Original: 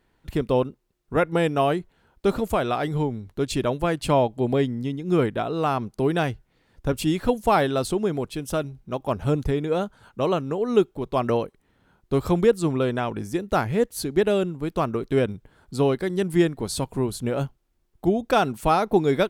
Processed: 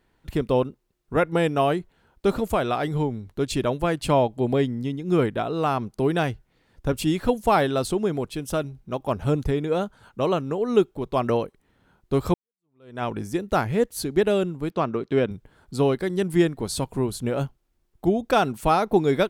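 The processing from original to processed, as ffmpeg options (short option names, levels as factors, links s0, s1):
-filter_complex "[0:a]asettb=1/sr,asplit=3[s0][s1][s2];[s0]atrim=end=14.704[s3];[s1]atrim=start=14.7:end=15.31,asetpts=PTS-STARTPTS,afade=t=in:d=0.004:c=qsin,afade=t=out:st=0.606:d=0.004:c=qsin,highpass=120,lowpass=5100[s4];[s2]atrim=start=15.306[s5];[s3][s4]acrossfade=d=0.004:c1=hsin:c2=qsin[s6];[s6][s5]acrossfade=d=0.004:c1=qsin:c2=hsin,asplit=2[s7][s8];[s7]atrim=end=12.34,asetpts=PTS-STARTPTS,afade=t=out:st=12.336:d=0.004:c=hsin[s9];[s8]atrim=start=12.34,asetpts=PTS-STARTPTS,afade=t=in:d=0.69:c=exp[s10];[s9][s10]concat=n=2:v=0:a=1"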